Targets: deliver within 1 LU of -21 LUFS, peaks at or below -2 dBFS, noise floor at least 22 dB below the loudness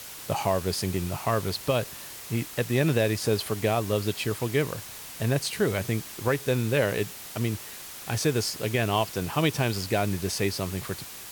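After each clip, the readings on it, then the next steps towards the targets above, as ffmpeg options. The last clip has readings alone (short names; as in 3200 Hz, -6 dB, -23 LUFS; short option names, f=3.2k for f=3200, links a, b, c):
noise floor -42 dBFS; noise floor target -50 dBFS; loudness -27.5 LUFS; peak -12.0 dBFS; loudness target -21.0 LUFS
-> -af "afftdn=nr=8:nf=-42"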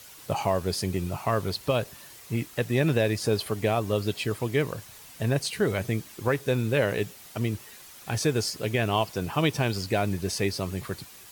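noise floor -48 dBFS; noise floor target -50 dBFS
-> -af "afftdn=nr=6:nf=-48"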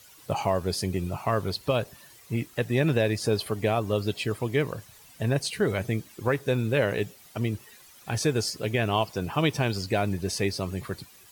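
noise floor -53 dBFS; loudness -28.0 LUFS; peak -12.5 dBFS; loudness target -21.0 LUFS
-> -af "volume=7dB"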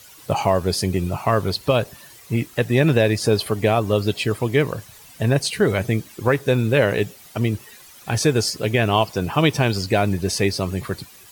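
loudness -21.0 LUFS; peak -5.5 dBFS; noise floor -46 dBFS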